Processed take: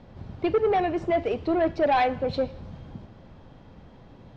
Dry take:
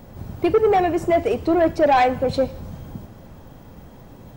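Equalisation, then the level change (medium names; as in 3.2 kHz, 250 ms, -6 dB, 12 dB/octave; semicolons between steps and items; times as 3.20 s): four-pole ladder low-pass 5.2 kHz, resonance 25%; 0.0 dB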